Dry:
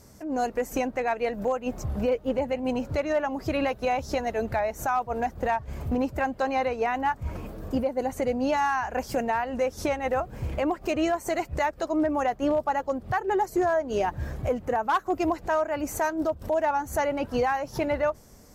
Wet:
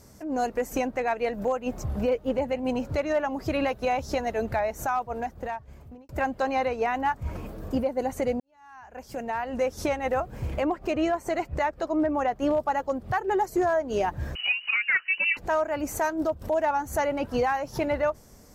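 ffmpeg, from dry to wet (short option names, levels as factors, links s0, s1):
-filter_complex "[0:a]asettb=1/sr,asplit=3[s0][s1][s2];[s0]atrim=end=10.654[s3];[s1]atrim=start=10.65:end=12.36,asetpts=PTS-STARTPTS,afade=t=in:d=0.004:c=qsin,afade=t=out:st=1.706:d=0.004:c=qsin,highshelf=f=4600:g=-8.5[s4];[s2]atrim=start=12.356[s5];[s3][s4]acrossfade=d=0.004:c1=hsin:c2=qsin[s6];[s6][s5]acrossfade=d=0.004:c1=qsin:c2=hsin,asettb=1/sr,asplit=3[s7][s8][s9];[s7]atrim=end=14.354[s10];[s8]atrim=start=14.35:end=15.37,asetpts=PTS-STARTPTS,afade=t=in:d=0.004:c=qsin,afade=t=out:st=1.016:d=0.004:c=qsin,lowpass=f=2600:t=q:w=0.5098,lowpass=f=2600:t=q:w=0.6013,lowpass=f=2600:t=q:w=0.9,lowpass=f=2600:t=q:w=2.563,afreqshift=-3000[s11];[s9]atrim=start=15.366[s12];[s10][s11]acrossfade=d=0.004:c1=hsin:c2=qsin[s13];[s13][s12]acrossfade=d=0.004:c1=qsin:c2=hsin,asplit=3[s14][s15][s16];[s14]atrim=end=6.09,asetpts=PTS-STARTPTS,afade=t=out:st=4.76:d=1.33[s17];[s15]atrim=start=6.09:end=8.4,asetpts=PTS-STARTPTS,afade=t=in:d=0.004:c=hsin,afade=t=out:st=2.306:d=0.004:c=hsin[s18];[s16]atrim=start=8.4,asetpts=PTS-STARTPTS,afade=t=in:d=1.17:c=qua[s19];[s17][s18][s19]concat=n=3:v=0:a=1"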